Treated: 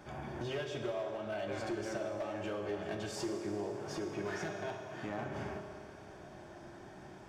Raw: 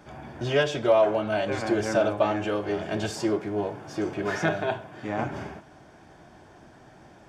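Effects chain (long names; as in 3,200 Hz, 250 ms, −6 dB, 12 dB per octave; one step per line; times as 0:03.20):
downward compressor 8 to 1, threshold −34 dBFS, peak gain reduction 18.5 dB
hard clipping −31 dBFS, distortion −18 dB
convolution reverb RT60 3.0 s, pre-delay 3 ms, DRR 4.5 dB
level −2.5 dB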